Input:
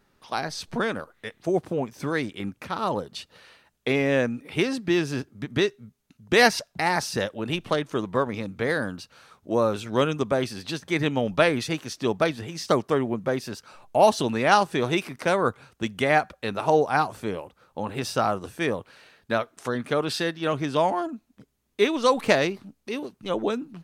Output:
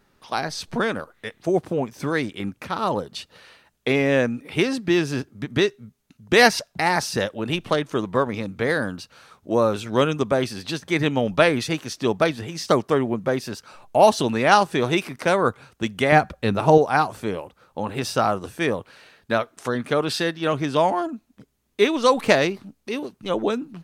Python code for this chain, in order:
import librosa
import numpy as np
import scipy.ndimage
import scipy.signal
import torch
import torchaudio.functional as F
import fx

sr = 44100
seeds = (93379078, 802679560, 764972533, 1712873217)

y = fx.low_shelf(x, sr, hz=290.0, db=11.0, at=(16.12, 16.78))
y = y * librosa.db_to_amplitude(3.0)